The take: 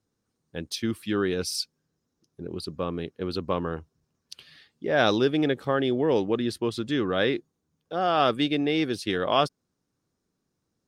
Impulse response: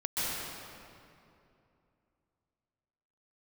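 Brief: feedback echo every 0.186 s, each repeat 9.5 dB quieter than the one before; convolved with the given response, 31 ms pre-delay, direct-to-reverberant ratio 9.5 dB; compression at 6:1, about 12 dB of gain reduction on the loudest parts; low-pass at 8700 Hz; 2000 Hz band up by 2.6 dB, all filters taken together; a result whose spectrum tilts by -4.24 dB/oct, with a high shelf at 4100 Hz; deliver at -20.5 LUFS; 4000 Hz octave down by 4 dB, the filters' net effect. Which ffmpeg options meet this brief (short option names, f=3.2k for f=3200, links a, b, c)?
-filter_complex "[0:a]lowpass=8.7k,equalizer=f=2k:t=o:g=5.5,equalizer=f=4k:t=o:g=-4,highshelf=f=4.1k:g=-5.5,acompressor=threshold=-30dB:ratio=6,aecho=1:1:186|372|558|744:0.335|0.111|0.0365|0.012,asplit=2[a][b];[1:a]atrim=start_sample=2205,adelay=31[c];[b][c]afir=irnorm=-1:irlink=0,volume=-17.5dB[d];[a][d]amix=inputs=2:normalize=0,volume=14dB"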